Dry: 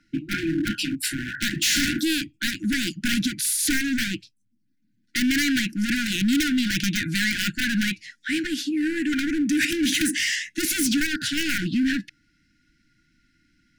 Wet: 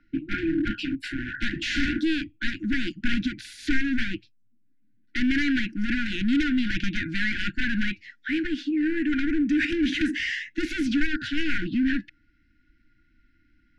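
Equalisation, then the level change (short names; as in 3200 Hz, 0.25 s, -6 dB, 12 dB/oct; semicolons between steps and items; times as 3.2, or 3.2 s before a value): LPF 2900 Hz 12 dB/oct; tilt -1.5 dB/oct; bell 160 Hz -11.5 dB 0.99 oct; 0.0 dB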